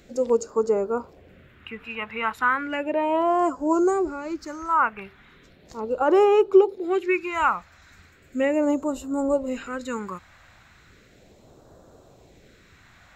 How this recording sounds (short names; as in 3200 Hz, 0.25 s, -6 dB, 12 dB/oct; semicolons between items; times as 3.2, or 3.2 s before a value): phasing stages 2, 0.36 Hz, lowest notch 410–2100 Hz